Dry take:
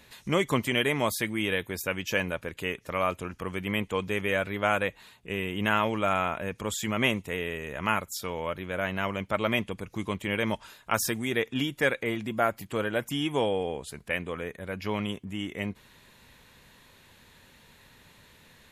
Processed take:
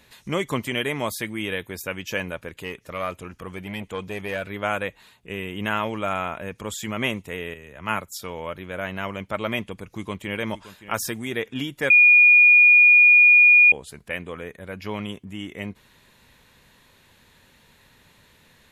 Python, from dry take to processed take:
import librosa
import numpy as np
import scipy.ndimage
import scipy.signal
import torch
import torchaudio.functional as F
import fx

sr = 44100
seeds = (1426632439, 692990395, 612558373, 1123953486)

y = fx.transformer_sat(x, sr, knee_hz=810.0, at=(2.6, 4.5))
y = fx.band_widen(y, sr, depth_pct=70, at=(7.54, 8.18))
y = fx.echo_throw(y, sr, start_s=9.78, length_s=0.62, ms=570, feedback_pct=15, wet_db=-14.5)
y = fx.edit(y, sr, fx.bleep(start_s=11.9, length_s=1.82, hz=2440.0, db=-9.5), tone=tone)